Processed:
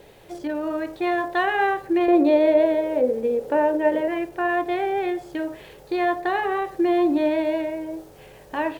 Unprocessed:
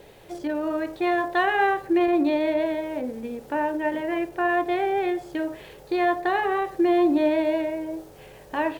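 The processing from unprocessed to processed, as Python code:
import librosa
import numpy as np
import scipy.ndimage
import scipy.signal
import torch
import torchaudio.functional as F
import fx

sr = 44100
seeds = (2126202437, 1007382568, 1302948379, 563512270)

y = fx.peak_eq(x, sr, hz=490.0, db=14.5, octaves=0.7, at=(2.08, 4.08))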